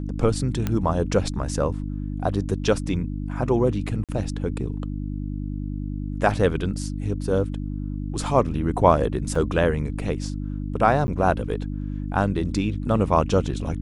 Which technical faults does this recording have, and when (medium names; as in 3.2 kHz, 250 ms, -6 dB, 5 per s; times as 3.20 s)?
hum 50 Hz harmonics 6 -29 dBFS
0.67 s: pop -11 dBFS
4.04–4.09 s: dropout 47 ms
9.35 s: dropout 4.1 ms
11.07–11.08 s: dropout 10 ms